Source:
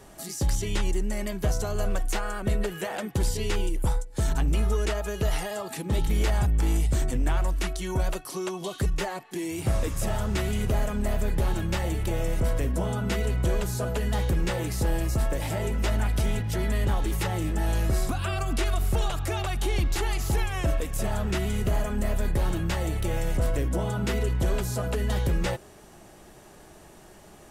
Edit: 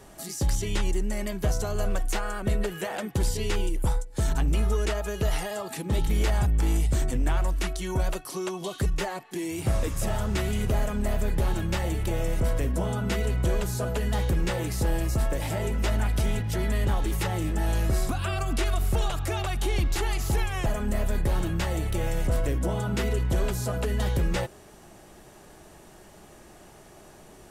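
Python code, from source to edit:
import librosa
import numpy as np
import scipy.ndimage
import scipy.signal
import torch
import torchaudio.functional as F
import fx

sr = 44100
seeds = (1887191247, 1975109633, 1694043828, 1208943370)

y = fx.edit(x, sr, fx.cut(start_s=20.66, length_s=1.1), tone=tone)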